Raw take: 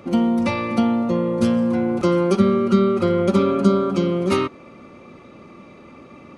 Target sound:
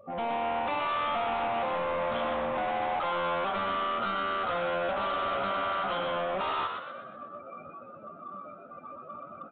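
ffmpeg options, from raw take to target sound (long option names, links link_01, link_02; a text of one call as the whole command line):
ffmpeg -i in.wav -filter_complex "[0:a]afftdn=noise_reduction=32:noise_floor=-36,bandreject=frequency=2200:width=5.7,adynamicequalizer=threshold=0.0282:dfrequency=170:dqfactor=0.8:tfrequency=170:tqfactor=0.8:attack=5:release=100:ratio=0.375:range=3:mode=cutabove:tftype=bell,acompressor=threshold=-25dB:ratio=2.5,lowshelf=frequency=500:width_type=q:width=3:gain=-13,dynaudnorm=framelen=110:gausssize=3:maxgain=5.5dB,alimiter=limit=-19dB:level=0:latency=1:release=17,atempo=0.67,aresample=16000,asoftclip=type=tanh:threshold=-32dB,aresample=44100,asplit=7[link_01][link_02][link_03][link_04][link_05][link_06][link_07];[link_02]adelay=123,afreqshift=81,volume=-6dB[link_08];[link_03]adelay=246,afreqshift=162,volume=-12.7dB[link_09];[link_04]adelay=369,afreqshift=243,volume=-19.5dB[link_10];[link_05]adelay=492,afreqshift=324,volume=-26.2dB[link_11];[link_06]adelay=615,afreqshift=405,volume=-33dB[link_12];[link_07]adelay=738,afreqshift=486,volume=-39.7dB[link_13];[link_01][link_08][link_09][link_10][link_11][link_12][link_13]amix=inputs=7:normalize=0,aresample=8000,aresample=44100,volume=3dB" out.wav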